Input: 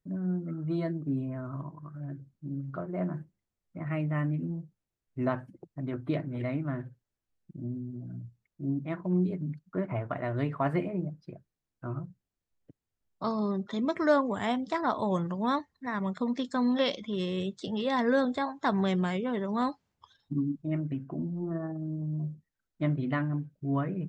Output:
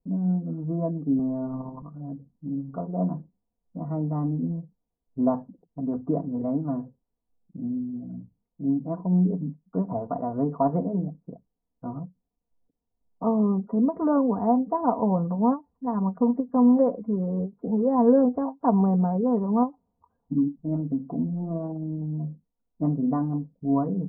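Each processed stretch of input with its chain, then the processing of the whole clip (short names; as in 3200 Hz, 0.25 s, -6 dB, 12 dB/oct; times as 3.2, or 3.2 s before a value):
1.19–1.82 G.711 law mismatch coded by mu + robotiser 130 Hz + three-band squash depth 70%
whole clip: steep low-pass 1000 Hz 36 dB/oct; comb 4.2 ms, depth 73%; ending taper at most 330 dB/s; gain +4.5 dB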